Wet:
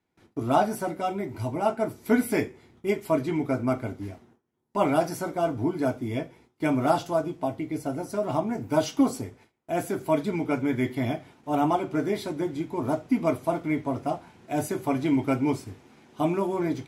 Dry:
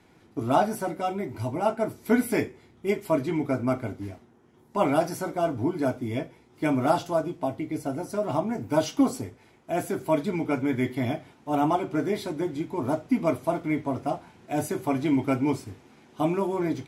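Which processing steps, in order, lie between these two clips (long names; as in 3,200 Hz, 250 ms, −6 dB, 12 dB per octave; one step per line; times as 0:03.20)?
noise gate with hold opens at −46 dBFS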